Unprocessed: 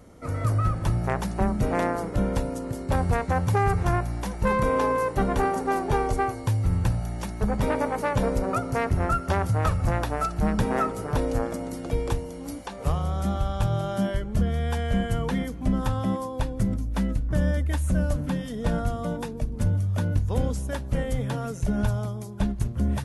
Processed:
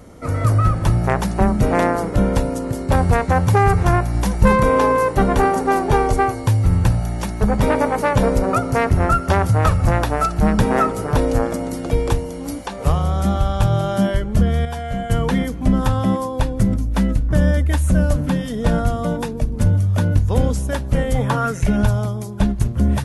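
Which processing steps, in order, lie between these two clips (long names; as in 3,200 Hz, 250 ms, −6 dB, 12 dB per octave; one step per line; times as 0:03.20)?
0:04.14–0:04.56: bass and treble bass +5 dB, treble +3 dB
0:14.65–0:15.10: tuned comb filter 140 Hz, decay 0.16 s, harmonics all, mix 80%
0:21.14–0:21.76: parametric band 750 Hz → 2,800 Hz +11.5 dB 0.8 octaves
level +8 dB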